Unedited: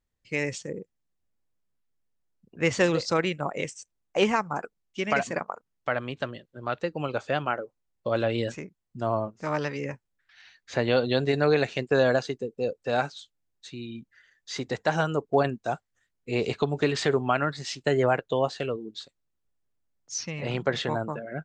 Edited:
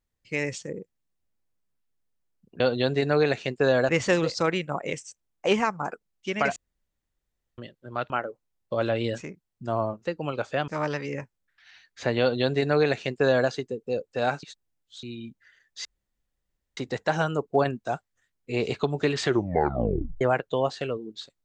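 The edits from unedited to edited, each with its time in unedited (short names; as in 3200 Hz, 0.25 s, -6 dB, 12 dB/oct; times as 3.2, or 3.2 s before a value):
5.27–6.29 room tone
6.81–7.44 move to 9.39
10.91–12.2 copy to 2.6
13.14–13.74 reverse
14.56 insert room tone 0.92 s
17.02 tape stop 0.98 s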